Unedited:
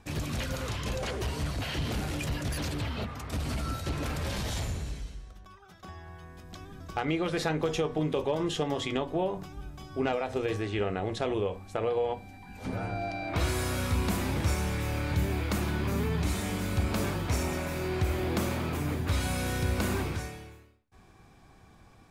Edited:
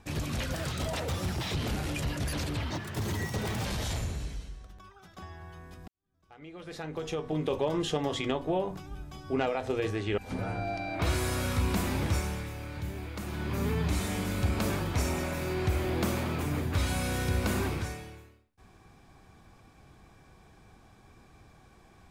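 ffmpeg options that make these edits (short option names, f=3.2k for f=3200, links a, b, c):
-filter_complex "[0:a]asplit=9[a][b][c][d][e][f][g][h][i];[a]atrim=end=0.544[j];[b]atrim=start=0.54:end=1.81,asetpts=PTS-STARTPTS,asetrate=54684,aresample=44100[k];[c]atrim=start=1.806:end=2.954[l];[d]atrim=start=2.95:end=4.31,asetpts=PTS-STARTPTS,asetrate=63504,aresample=44100[m];[e]atrim=start=4.306:end=6.54,asetpts=PTS-STARTPTS,afade=t=out:st=2.23:d=0.004:c=hsin[n];[f]atrim=start=6.54:end=10.842,asetpts=PTS-STARTPTS,afade=t=in:d=1.67:c=qua[o];[g]atrim=start=12.518:end=14.88,asetpts=PTS-STARTPTS,afade=t=out:st=1.882:d=0.48:silence=0.375837[p];[h]atrim=start=14.88:end=15.56,asetpts=PTS-STARTPTS,volume=-8.5dB[q];[i]atrim=start=15.56,asetpts=PTS-STARTPTS,afade=t=in:d=0.48:silence=0.375837[r];[j][k]acrossfade=d=0.004:c1=hsin:c2=hsin[s];[s][l]acrossfade=d=0.004:c1=hsin:c2=hsin[t];[t][m]acrossfade=d=0.004:c1=hsin:c2=hsin[u];[n][o]concat=n=2:v=0:a=1[v];[u][v]acrossfade=d=0.004:c1=hsin:c2=hsin[w];[p][q][r]concat=n=3:v=0:a=1[x];[w][x]acrossfade=d=0.004:c1=hsin:c2=hsin"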